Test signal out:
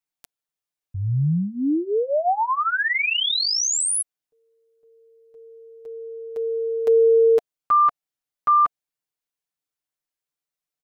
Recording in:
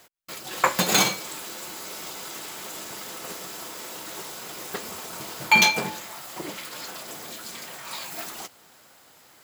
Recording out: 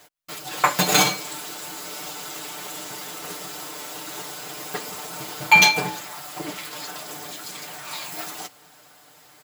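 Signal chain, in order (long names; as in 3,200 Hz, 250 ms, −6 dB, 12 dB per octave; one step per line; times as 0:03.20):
parametric band 700 Hz +3.5 dB 0.22 octaves
comb filter 6.7 ms, depth 81%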